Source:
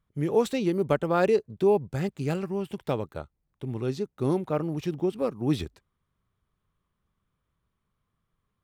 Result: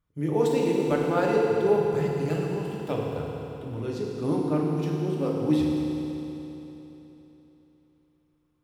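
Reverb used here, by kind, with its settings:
feedback delay network reverb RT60 3.5 s, high-frequency decay 0.95×, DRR −3 dB
level −4 dB

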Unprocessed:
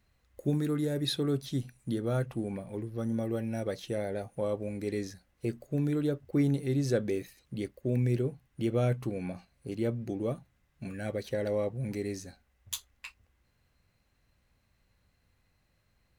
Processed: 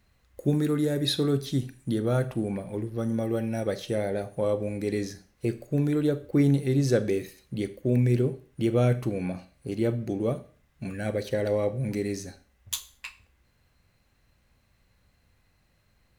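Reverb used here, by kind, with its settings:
four-comb reverb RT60 0.42 s, combs from 29 ms, DRR 12.5 dB
level +5 dB

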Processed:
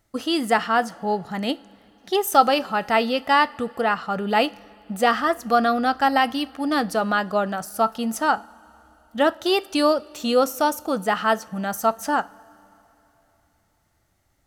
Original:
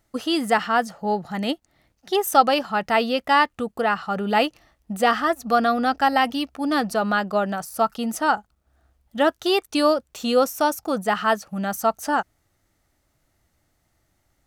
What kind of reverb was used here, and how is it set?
coupled-rooms reverb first 0.33 s, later 3.5 s, from −19 dB, DRR 15 dB

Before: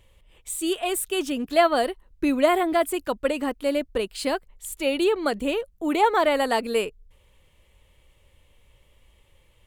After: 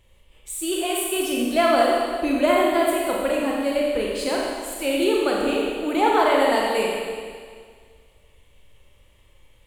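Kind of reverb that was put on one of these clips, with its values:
four-comb reverb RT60 1.9 s, combs from 29 ms, DRR −3 dB
level −2 dB

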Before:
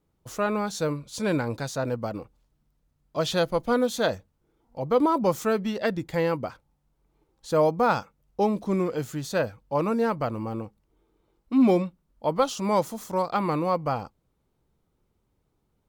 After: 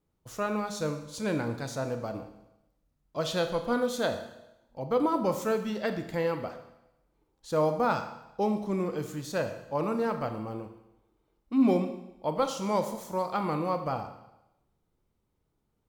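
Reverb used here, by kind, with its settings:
four-comb reverb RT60 0.9 s, combs from 26 ms, DRR 7 dB
level −5 dB

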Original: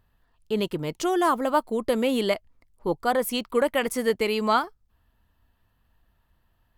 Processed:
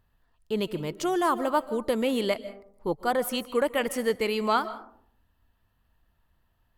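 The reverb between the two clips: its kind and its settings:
comb and all-pass reverb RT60 0.63 s, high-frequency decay 0.35×, pre-delay 105 ms, DRR 15 dB
level −2.5 dB

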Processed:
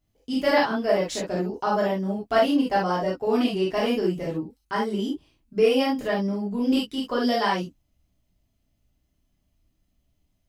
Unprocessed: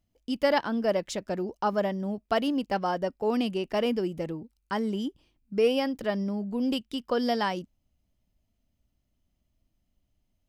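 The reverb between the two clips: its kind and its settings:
reverb whose tail is shaped and stops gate 90 ms flat, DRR −6 dB
level −2 dB

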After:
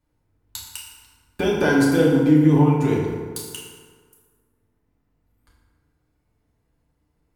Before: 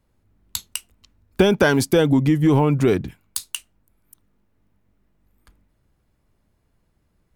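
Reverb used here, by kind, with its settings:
feedback delay network reverb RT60 1.7 s, low-frequency decay 0.95×, high-frequency decay 0.55×, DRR −5 dB
level −9 dB

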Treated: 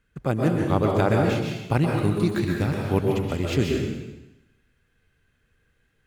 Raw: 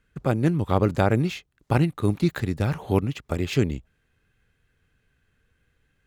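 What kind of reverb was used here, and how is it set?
dense smooth reverb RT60 1 s, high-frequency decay 1×, pre-delay 110 ms, DRR 0 dB
level −1.5 dB

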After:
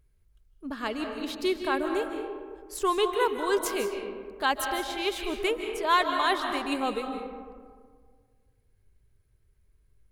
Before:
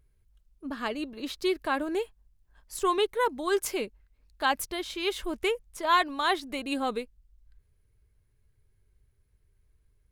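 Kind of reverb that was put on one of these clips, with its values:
comb and all-pass reverb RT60 1.8 s, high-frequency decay 0.4×, pre-delay 115 ms, DRR 4.5 dB

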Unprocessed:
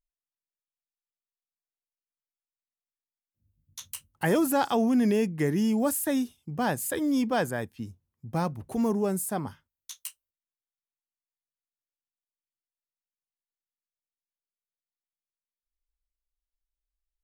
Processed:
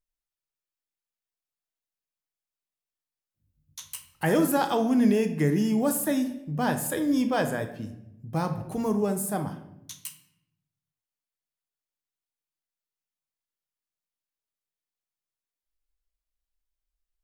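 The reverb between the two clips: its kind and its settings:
rectangular room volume 240 cubic metres, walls mixed, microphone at 0.52 metres

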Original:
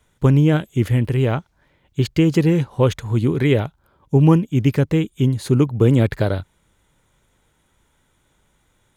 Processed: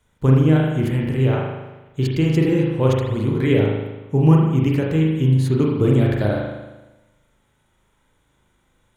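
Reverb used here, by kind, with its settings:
spring reverb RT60 1.1 s, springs 38 ms, chirp 45 ms, DRR −2 dB
level −4.5 dB

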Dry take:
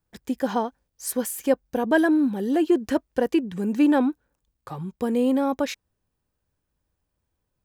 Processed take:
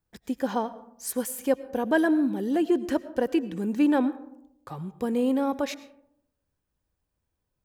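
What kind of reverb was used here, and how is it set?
comb and all-pass reverb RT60 0.77 s, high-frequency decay 0.35×, pre-delay 65 ms, DRR 16 dB
level −3 dB

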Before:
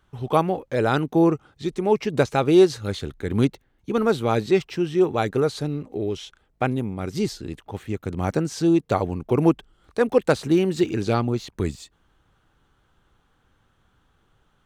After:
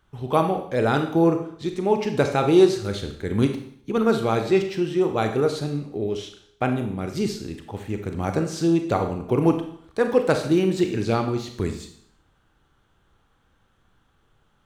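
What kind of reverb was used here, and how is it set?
four-comb reverb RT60 0.63 s, combs from 28 ms, DRR 5.5 dB
level −1 dB

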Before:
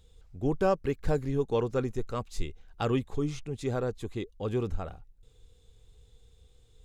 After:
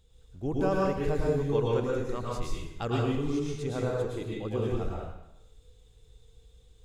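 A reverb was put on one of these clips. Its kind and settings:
dense smooth reverb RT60 0.85 s, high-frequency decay 0.95×, pre-delay 95 ms, DRR −4 dB
level −4 dB

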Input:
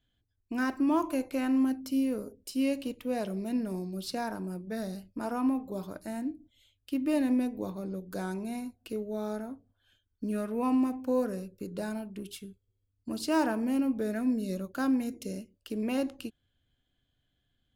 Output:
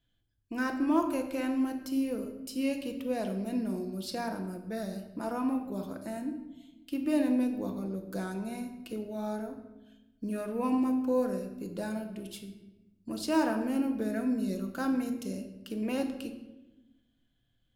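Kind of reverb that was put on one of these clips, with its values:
rectangular room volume 500 cubic metres, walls mixed, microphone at 0.74 metres
level −1.5 dB

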